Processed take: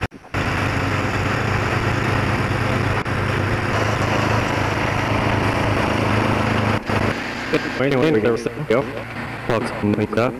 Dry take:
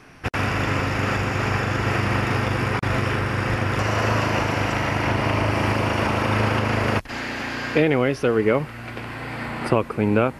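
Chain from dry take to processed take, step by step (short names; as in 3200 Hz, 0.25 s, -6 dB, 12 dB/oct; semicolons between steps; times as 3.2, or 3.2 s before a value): slices in reverse order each 0.113 s, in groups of 3; delay with a stepping band-pass 0.109 s, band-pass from 280 Hz, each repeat 1.4 oct, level -8 dB; wavefolder -9.5 dBFS; gain +2.5 dB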